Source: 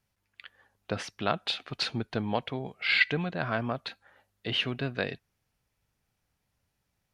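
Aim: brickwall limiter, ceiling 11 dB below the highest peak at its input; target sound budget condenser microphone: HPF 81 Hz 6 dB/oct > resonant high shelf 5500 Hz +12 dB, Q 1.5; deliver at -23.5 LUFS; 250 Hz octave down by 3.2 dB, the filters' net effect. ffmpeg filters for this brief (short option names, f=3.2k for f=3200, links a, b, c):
-af "equalizer=f=250:t=o:g=-3.5,alimiter=limit=-21.5dB:level=0:latency=1,highpass=f=81:p=1,highshelf=f=5.5k:t=q:w=1.5:g=12,volume=12dB"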